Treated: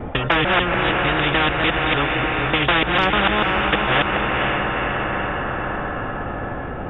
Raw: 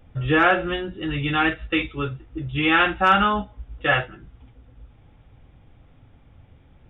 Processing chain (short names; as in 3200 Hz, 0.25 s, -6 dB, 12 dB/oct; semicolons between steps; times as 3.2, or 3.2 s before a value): local time reversal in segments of 0.149 s; LPF 1200 Hz 12 dB/oct; diffused feedback echo 0.489 s, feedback 50%, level -11 dB; spectral compressor 4:1; gain +7.5 dB